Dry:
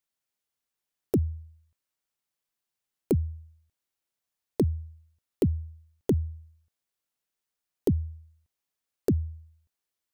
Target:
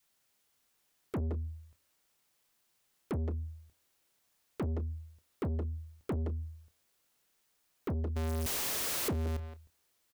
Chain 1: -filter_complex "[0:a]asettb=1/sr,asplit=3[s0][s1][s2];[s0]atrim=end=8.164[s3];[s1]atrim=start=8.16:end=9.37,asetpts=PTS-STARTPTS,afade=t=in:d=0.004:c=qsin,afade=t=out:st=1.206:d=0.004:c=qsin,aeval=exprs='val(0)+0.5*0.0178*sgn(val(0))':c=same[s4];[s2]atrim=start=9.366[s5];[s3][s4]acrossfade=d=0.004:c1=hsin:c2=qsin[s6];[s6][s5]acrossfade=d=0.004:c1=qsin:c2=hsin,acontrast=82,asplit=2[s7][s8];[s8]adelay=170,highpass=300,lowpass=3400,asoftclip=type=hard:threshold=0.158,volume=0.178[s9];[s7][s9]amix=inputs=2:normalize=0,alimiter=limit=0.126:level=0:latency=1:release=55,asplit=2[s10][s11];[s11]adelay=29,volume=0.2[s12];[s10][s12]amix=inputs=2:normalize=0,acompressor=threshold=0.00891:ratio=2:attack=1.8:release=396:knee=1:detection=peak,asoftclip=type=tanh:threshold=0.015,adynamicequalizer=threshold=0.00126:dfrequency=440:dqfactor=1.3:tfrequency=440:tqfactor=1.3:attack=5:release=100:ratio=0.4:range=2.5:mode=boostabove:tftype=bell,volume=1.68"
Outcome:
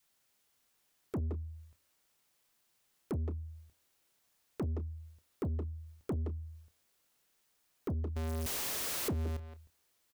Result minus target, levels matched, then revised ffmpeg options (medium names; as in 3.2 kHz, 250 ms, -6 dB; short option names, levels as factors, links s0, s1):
compression: peak gain reduction +5.5 dB
-filter_complex "[0:a]asettb=1/sr,asplit=3[s0][s1][s2];[s0]atrim=end=8.164[s3];[s1]atrim=start=8.16:end=9.37,asetpts=PTS-STARTPTS,afade=t=in:d=0.004:c=qsin,afade=t=out:st=1.206:d=0.004:c=qsin,aeval=exprs='val(0)+0.5*0.0178*sgn(val(0))':c=same[s4];[s2]atrim=start=9.366[s5];[s3][s4]acrossfade=d=0.004:c1=hsin:c2=qsin[s6];[s6][s5]acrossfade=d=0.004:c1=qsin:c2=hsin,acontrast=82,asplit=2[s7][s8];[s8]adelay=170,highpass=300,lowpass=3400,asoftclip=type=hard:threshold=0.158,volume=0.178[s9];[s7][s9]amix=inputs=2:normalize=0,alimiter=limit=0.126:level=0:latency=1:release=55,asplit=2[s10][s11];[s11]adelay=29,volume=0.2[s12];[s10][s12]amix=inputs=2:normalize=0,acompressor=threshold=0.0316:ratio=2:attack=1.8:release=396:knee=1:detection=peak,asoftclip=type=tanh:threshold=0.015,adynamicequalizer=threshold=0.00126:dfrequency=440:dqfactor=1.3:tfrequency=440:tqfactor=1.3:attack=5:release=100:ratio=0.4:range=2.5:mode=boostabove:tftype=bell,volume=1.68"